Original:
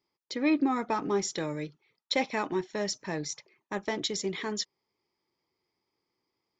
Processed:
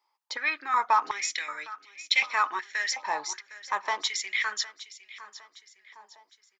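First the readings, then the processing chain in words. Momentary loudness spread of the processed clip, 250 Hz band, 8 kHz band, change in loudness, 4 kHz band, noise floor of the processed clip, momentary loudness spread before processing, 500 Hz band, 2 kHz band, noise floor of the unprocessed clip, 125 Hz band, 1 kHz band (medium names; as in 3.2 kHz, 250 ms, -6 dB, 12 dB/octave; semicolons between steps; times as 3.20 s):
20 LU, -24.0 dB, +3.0 dB, +3.0 dB, +4.5 dB, -75 dBFS, 11 LU, -11.5 dB, +9.5 dB, -85 dBFS, under -25 dB, +8.0 dB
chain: feedback delay 759 ms, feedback 42%, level -16 dB; step-sequenced high-pass 2.7 Hz 900–2400 Hz; trim +2.5 dB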